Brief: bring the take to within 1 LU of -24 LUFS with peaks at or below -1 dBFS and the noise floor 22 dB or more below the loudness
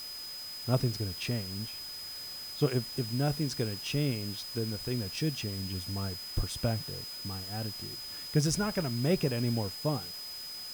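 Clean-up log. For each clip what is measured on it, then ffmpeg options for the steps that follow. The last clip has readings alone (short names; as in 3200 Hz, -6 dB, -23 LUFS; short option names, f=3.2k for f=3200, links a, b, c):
steady tone 5000 Hz; tone level -40 dBFS; noise floor -42 dBFS; noise floor target -55 dBFS; loudness -33.0 LUFS; peak -14.0 dBFS; loudness target -24.0 LUFS
-> -af "bandreject=f=5k:w=30"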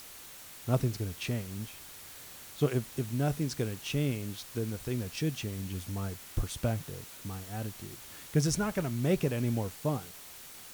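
steady tone none; noise floor -49 dBFS; noise floor target -56 dBFS
-> -af "afftdn=nr=7:nf=-49"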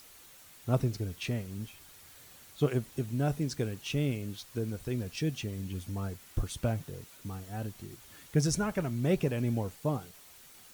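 noise floor -55 dBFS; noise floor target -56 dBFS
-> -af "afftdn=nr=6:nf=-55"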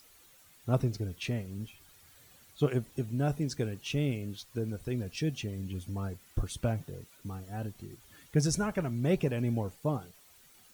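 noise floor -60 dBFS; loudness -33.5 LUFS; peak -14.0 dBFS; loudness target -24.0 LUFS
-> -af "volume=9.5dB"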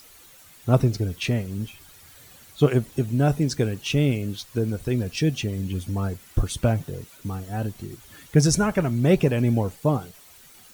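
loudness -24.0 LUFS; peak -4.5 dBFS; noise floor -50 dBFS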